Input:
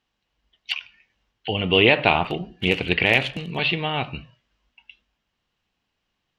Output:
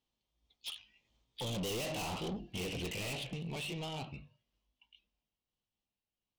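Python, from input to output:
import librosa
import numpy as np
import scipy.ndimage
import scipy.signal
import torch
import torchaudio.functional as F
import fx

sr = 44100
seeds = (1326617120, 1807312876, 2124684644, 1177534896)

y = fx.pitch_ramps(x, sr, semitones=2.0, every_ms=824)
y = fx.doppler_pass(y, sr, speed_mps=19, closest_m=12.0, pass_at_s=1.97)
y = 10.0 ** (-37.0 / 20.0) * np.tanh(y / 10.0 ** (-37.0 / 20.0))
y = fx.peak_eq(y, sr, hz=1600.0, db=-11.5, octaves=1.0)
y = y * librosa.db_to_amplitude(2.0)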